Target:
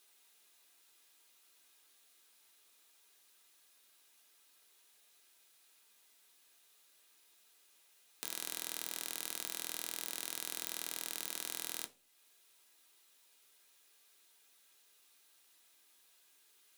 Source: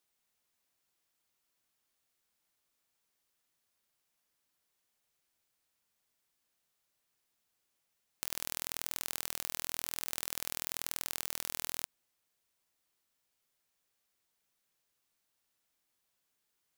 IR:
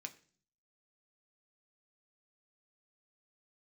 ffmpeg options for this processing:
-filter_complex "[0:a]lowshelf=frequency=320:gain=-10,asplit=2[link_01][link_02];[link_02]acompressor=threshold=-54dB:ratio=6,volume=1.5dB[link_03];[link_01][link_03]amix=inputs=2:normalize=0,asoftclip=type=tanh:threshold=-19.5dB[link_04];[1:a]atrim=start_sample=2205,asetrate=70560,aresample=44100[link_05];[link_04][link_05]afir=irnorm=-1:irlink=0,volume=15.5dB"

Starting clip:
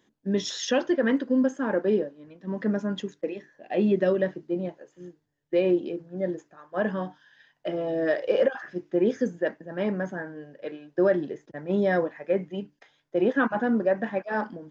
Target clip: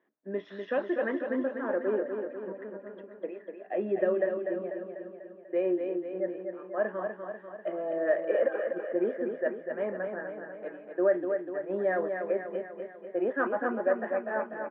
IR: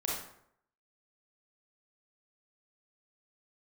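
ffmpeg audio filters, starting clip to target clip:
-filter_complex "[0:a]asettb=1/sr,asplit=3[link_01][link_02][link_03];[link_01]atrim=end=2.524[link_04];[link_02]atrim=start=2.52:end=3.21,asetpts=PTS-STARTPTS,afade=type=in:duration=0.004:curve=qsin,afade=type=out:start_time=0.686:duration=0.004:curve=qsin,acompressor=threshold=-37dB:ratio=6[link_05];[link_03]atrim=start=3.206[link_06];[link_04][link_05]acrossfade=duration=0.004:curve1=hsin:curve2=qsin[link_07];[link_07][link_06]acrossfade=duration=0.004:curve1=qsin:curve2=hsin,highpass=290,equalizer=frequency=380:width_type=q:width=4:gain=4,equalizer=frequency=630:width_type=q:width=4:gain=8,equalizer=frequency=1200:width_type=q:width=4:gain=5,equalizer=frequency=1800:width_type=q:width=4:gain=4,lowpass=frequency=2300:width=0.5412,lowpass=frequency=2300:width=1.3066,aecho=1:1:246|492|738|984|1230|1476|1722:0.501|0.286|0.163|0.0928|0.0529|0.0302|0.0172,volume=-8dB"

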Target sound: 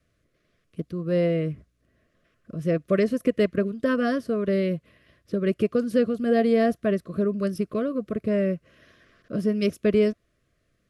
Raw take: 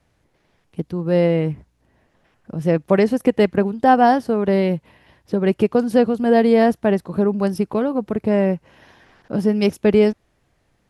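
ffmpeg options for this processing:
ffmpeg -i in.wav -af "asuperstop=centerf=850:order=20:qfactor=2.5,volume=-6dB" out.wav

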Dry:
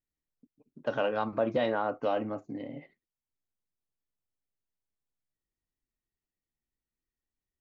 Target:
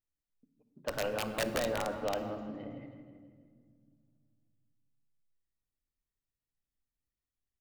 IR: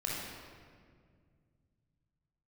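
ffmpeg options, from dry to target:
-filter_complex "[0:a]aecho=1:1:162|324|486|648|810:0.299|0.143|0.0688|0.033|0.0158,aeval=exprs='(mod(8.91*val(0)+1,2)-1)/8.91':channel_layout=same,asplit=2[link_01][link_02];[1:a]atrim=start_sample=2205,lowshelf=frequency=230:gain=10[link_03];[link_02][link_03]afir=irnorm=-1:irlink=0,volume=-13dB[link_04];[link_01][link_04]amix=inputs=2:normalize=0,volume=-7dB"

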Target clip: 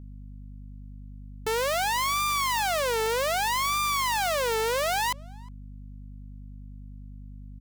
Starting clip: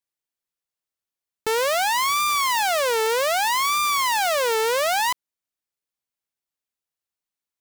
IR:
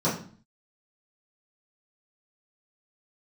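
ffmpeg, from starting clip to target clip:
-filter_complex "[0:a]alimiter=limit=-21.5dB:level=0:latency=1,asplit=2[link_01][link_02];[link_02]adelay=360,highpass=300,lowpass=3400,asoftclip=type=hard:threshold=-31dB,volume=-20dB[link_03];[link_01][link_03]amix=inputs=2:normalize=0,aeval=exprs='val(0)+0.00891*(sin(2*PI*50*n/s)+sin(2*PI*2*50*n/s)/2+sin(2*PI*3*50*n/s)/3+sin(2*PI*4*50*n/s)/4+sin(2*PI*5*50*n/s)/5)':channel_layout=same"

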